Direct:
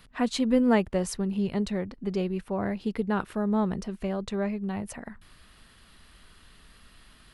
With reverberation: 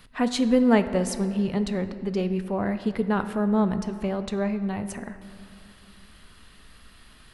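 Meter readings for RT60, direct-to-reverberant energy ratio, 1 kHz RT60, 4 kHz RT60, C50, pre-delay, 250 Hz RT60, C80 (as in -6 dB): 2.6 s, 9.5 dB, 2.5 s, 1.5 s, 11.0 dB, 4 ms, 3.2 s, 12.0 dB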